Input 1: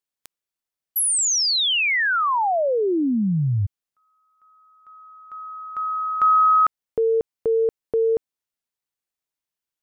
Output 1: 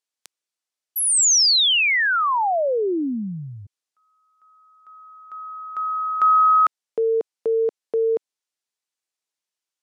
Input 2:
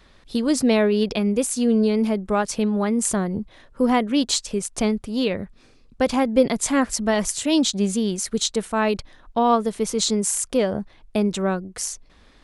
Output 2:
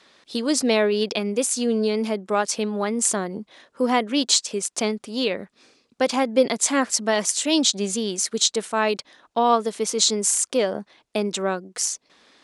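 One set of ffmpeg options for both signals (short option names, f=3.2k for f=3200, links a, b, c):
-af "highpass=280,lowpass=7.1k,highshelf=f=4.9k:g=10.5"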